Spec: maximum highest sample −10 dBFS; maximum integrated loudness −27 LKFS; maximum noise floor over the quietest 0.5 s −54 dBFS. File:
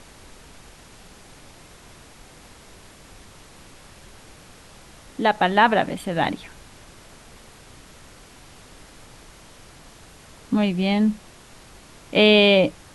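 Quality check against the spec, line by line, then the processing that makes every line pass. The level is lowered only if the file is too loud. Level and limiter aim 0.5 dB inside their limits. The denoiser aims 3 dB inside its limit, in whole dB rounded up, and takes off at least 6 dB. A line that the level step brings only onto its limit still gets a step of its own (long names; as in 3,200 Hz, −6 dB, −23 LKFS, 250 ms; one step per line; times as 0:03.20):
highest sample −3.0 dBFS: out of spec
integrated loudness −19.0 LKFS: out of spec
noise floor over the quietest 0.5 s −47 dBFS: out of spec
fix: level −8.5 dB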